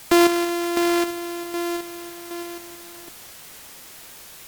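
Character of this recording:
a buzz of ramps at a fixed pitch in blocks of 128 samples
chopped level 1.3 Hz, depth 60%, duty 35%
a quantiser's noise floor 8 bits, dither triangular
AAC

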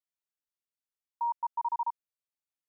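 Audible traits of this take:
background noise floor −95 dBFS
spectral slope −1.0 dB per octave

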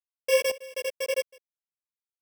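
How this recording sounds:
a buzz of ramps at a fixed pitch in blocks of 16 samples
sample-and-hold tremolo 4 Hz, depth 95%
a quantiser's noise floor 12 bits, dither none
a shimmering, thickened sound

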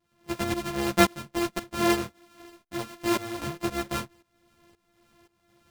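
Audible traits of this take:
a buzz of ramps at a fixed pitch in blocks of 128 samples
tremolo saw up 1.9 Hz, depth 90%
a shimmering, thickened sound

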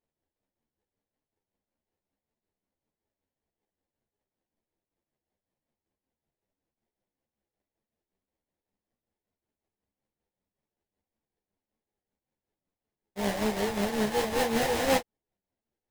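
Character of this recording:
a buzz of ramps at a fixed pitch in blocks of 8 samples
tremolo triangle 5.3 Hz, depth 65%
aliases and images of a low sample rate 1,300 Hz, jitter 20%
a shimmering, thickened sound

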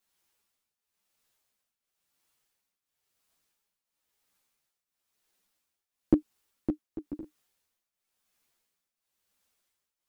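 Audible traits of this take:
tremolo triangle 0.98 Hz, depth 85%
a shimmering, thickened sound

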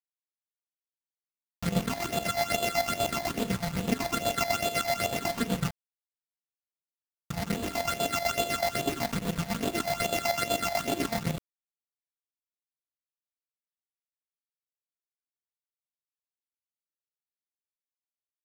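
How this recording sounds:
a buzz of ramps at a fixed pitch in blocks of 64 samples
phaser sweep stages 8, 2.4 Hz, lowest notch 370–1,800 Hz
a quantiser's noise floor 6 bits, dither none
chopped level 8 Hz, depth 65%, duty 50%

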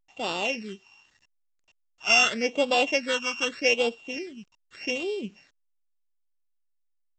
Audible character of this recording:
a buzz of ramps at a fixed pitch in blocks of 16 samples
phaser sweep stages 8, 0.83 Hz, lowest notch 550–1,900 Hz
a quantiser's noise floor 12 bits, dither none
A-law companding

